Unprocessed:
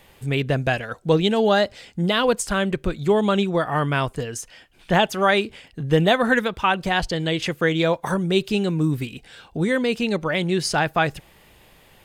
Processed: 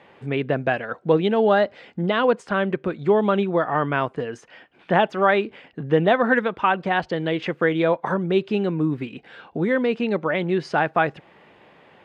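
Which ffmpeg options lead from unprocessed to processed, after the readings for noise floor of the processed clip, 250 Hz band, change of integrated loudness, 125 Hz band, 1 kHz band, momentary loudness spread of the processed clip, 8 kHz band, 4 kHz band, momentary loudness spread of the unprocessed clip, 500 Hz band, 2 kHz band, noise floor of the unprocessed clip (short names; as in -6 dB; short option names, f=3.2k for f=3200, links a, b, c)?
-54 dBFS, -1.0 dB, -0.5 dB, -4.0 dB, +1.0 dB, 9 LU, under -20 dB, -8.0 dB, 8 LU, +1.0 dB, -1.0 dB, -53 dBFS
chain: -filter_complex "[0:a]asplit=2[a][b];[b]acompressor=threshold=-31dB:ratio=6,volume=-3dB[c];[a][c]amix=inputs=2:normalize=0,highpass=200,lowpass=2k"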